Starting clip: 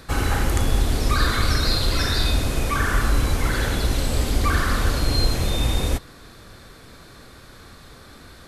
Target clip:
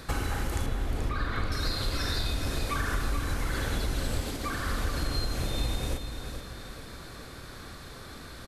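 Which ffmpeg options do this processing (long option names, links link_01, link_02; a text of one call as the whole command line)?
ffmpeg -i in.wav -filter_complex "[0:a]asettb=1/sr,asplit=3[link_01][link_02][link_03];[link_01]atrim=end=0.664[link_04];[link_02]atrim=start=0.66:end=1.52,asetpts=PTS-STARTPTS,afade=type=in:duration=0.004:curve=qsin,afade=type=out:start_time=0.856:duration=0.004:curve=qsin,lowpass=2700[link_05];[link_03]atrim=start=1.516[link_06];[link_04][link_05]acrossfade=duration=0.004:curve1=hsin:curve2=qsin[link_07];[link_07][link_06]acrossfade=duration=0.004:curve1=qsin:curve2=hsin,asettb=1/sr,asplit=3[link_08][link_09][link_10];[link_08]atrim=end=2.154[link_11];[link_09]atrim=start=2.15:end=2.58,asetpts=PTS-STARTPTS,afade=type=in:duration=0.004:curve=qsin,afade=type=out:start_time=0.426:duration=0.004:curve=qsin,aeval=exprs='0.355*(cos(1*acos(clip(val(0)/0.355,-1,1)))-cos(1*PI/2))+0.00708*(cos(4*acos(clip(val(0)/0.355,-1,1)))-cos(4*PI/2))':channel_layout=same[link_12];[link_10]atrim=start=2.576[link_13];[link_11][link_12]acrossfade=duration=0.004:curve1=hsin:curve2=qsin[link_14];[link_14][link_13]acrossfade=duration=0.004:curve1=qsin:curve2=hsin,acompressor=threshold=-27dB:ratio=6,asettb=1/sr,asplit=3[link_15][link_16][link_17];[link_15]atrim=end=4.204[link_18];[link_16]atrim=start=4.2:end=4.65,asetpts=PTS-STARTPTS,afade=type=in:duration=0.004:curve=qsin,afade=type=out:start_time=0.446:duration=0.004:curve=qsin,highpass=140[link_19];[link_17]atrim=start=4.646[link_20];[link_18][link_19]acrossfade=duration=0.004:curve1=hsin:curve2=qsin[link_21];[link_21][link_20]acrossfade=duration=0.004:curve1=qsin:curve2=hsin,aecho=1:1:432|864|1296|1728|2160:0.376|0.154|0.0632|0.0259|0.0106" out.wav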